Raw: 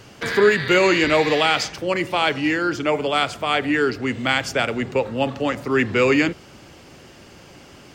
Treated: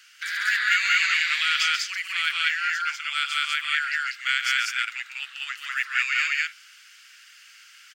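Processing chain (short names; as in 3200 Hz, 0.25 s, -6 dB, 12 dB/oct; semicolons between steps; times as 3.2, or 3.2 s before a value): Chebyshev high-pass 1400 Hz, order 5; loudspeakers at several distances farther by 48 m -8 dB, 67 m 0 dB; gain -2.5 dB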